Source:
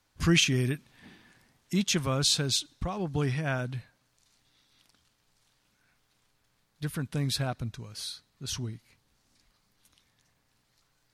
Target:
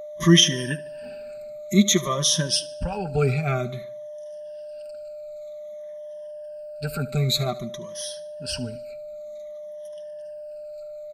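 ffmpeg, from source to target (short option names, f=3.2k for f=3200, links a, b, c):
-filter_complex "[0:a]afftfilt=real='re*pow(10,21/40*sin(2*PI*(1.2*log(max(b,1)*sr/1024/100)/log(2)-(-0.53)*(pts-256)/sr)))':imag='im*pow(10,21/40*sin(2*PI*(1.2*log(max(b,1)*sr/1024/100)/log(2)-(-0.53)*(pts-256)/sr)))':win_size=1024:overlap=0.75,aeval=exprs='val(0)+0.0126*sin(2*PI*600*n/s)':c=same,aecho=1:1:5.1:0.64,asplit=2[a][b];[b]aecho=0:1:74|148|222|296:0.112|0.0516|0.0237|0.0109[c];[a][c]amix=inputs=2:normalize=0"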